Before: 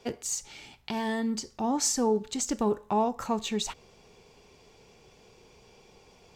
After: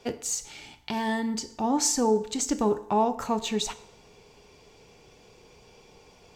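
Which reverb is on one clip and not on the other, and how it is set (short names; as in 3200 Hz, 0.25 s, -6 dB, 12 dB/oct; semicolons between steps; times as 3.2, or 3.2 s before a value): FDN reverb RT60 0.74 s, low-frequency decay 0.8×, high-frequency decay 0.85×, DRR 11.5 dB; gain +2 dB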